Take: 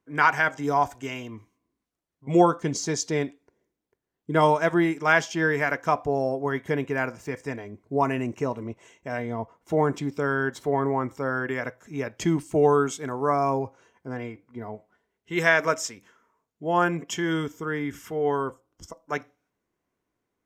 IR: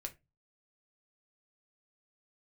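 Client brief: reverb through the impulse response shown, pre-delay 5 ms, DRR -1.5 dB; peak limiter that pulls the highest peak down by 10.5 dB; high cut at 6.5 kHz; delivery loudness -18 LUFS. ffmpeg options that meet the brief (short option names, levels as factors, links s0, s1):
-filter_complex "[0:a]lowpass=6500,alimiter=limit=0.168:level=0:latency=1,asplit=2[s0][s1];[1:a]atrim=start_sample=2205,adelay=5[s2];[s1][s2]afir=irnorm=-1:irlink=0,volume=1.58[s3];[s0][s3]amix=inputs=2:normalize=0,volume=2.24"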